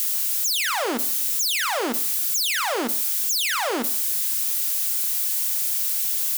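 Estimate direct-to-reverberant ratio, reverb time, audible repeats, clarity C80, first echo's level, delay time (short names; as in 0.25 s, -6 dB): 10.5 dB, 0.60 s, none, 19.5 dB, none, none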